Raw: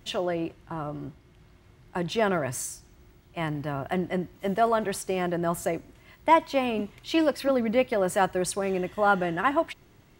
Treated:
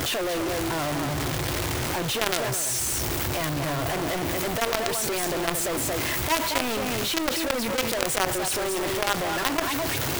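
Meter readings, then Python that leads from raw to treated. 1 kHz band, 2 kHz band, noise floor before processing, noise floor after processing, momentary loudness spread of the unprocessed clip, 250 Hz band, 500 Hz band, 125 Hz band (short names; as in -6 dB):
-1.5 dB, +5.0 dB, -57 dBFS, -28 dBFS, 12 LU, -0.5 dB, -1.5 dB, +4.0 dB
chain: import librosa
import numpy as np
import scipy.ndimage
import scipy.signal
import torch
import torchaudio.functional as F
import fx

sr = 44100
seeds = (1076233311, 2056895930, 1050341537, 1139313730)

y = x + 0.5 * 10.0 ** (-29.0 / 20.0) * np.sign(x)
y = scipy.signal.sosfilt(scipy.signal.butter(4, 63.0, 'highpass', fs=sr, output='sos'), y)
y = fx.high_shelf(y, sr, hz=5200.0, db=4.5)
y = y + 10.0 ** (-6.5 / 20.0) * np.pad(y, (int(228 * sr / 1000.0), 0))[:len(y)]
y = fx.quant_companded(y, sr, bits=2)
y = fx.peak_eq(y, sr, hz=190.0, db=-10.0, octaves=0.37)
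y = fx.env_flatten(y, sr, amount_pct=70)
y = y * 10.0 ** (-15.5 / 20.0)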